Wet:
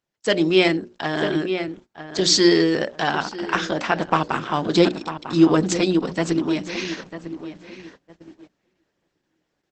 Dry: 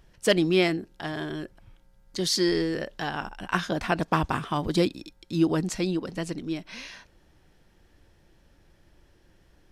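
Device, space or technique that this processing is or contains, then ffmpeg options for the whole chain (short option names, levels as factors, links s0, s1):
video call: -filter_complex "[0:a]bandreject=f=60:t=h:w=6,bandreject=f=120:t=h:w=6,bandreject=f=180:t=h:w=6,bandreject=f=240:t=h:w=6,bandreject=f=300:t=h:w=6,bandreject=f=360:t=h:w=6,bandreject=f=420:t=h:w=6,bandreject=f=480:t=h:w=6,bandreject=f=540:t=h:w=6,bandreject=f=600:t=h:w=6,asplit=3[s0][s1][s2];[s0]afade=t=out:st=3.51:d=0.02[s3];[s1]highpass=f=120:p=1,afade=t=in:st=3.51:d=0.02,afade=t=out:st=4.35:d=0.02[s4];[s2]afade=t=in:st=4.35:d=0.02[s5];[s3][s4][s5]amix=inputs=3:normalize=0,highpass=180,asplit=2[s6][s7];[s7]adelay=948,lowpass=f=2600:p=1,volume=0.251,asplit=2[s8][s9];[s9]adelay=948,lowpass=f=2600:p=1,volume=0.3,asplit=2[s10][s11];[s11]adelay=948,lowpass=f=2600:p=1,volume=0.3[s12];[s6][s8][s10][s12]amix=inputs=4:normalize=0,dynaudnorm=f=240:g=3:m=3.55,agate=range=0.1:threshold=0.00794:ratio=16:detection=peak" -ar 48000 -c:a libopus -b:a 12k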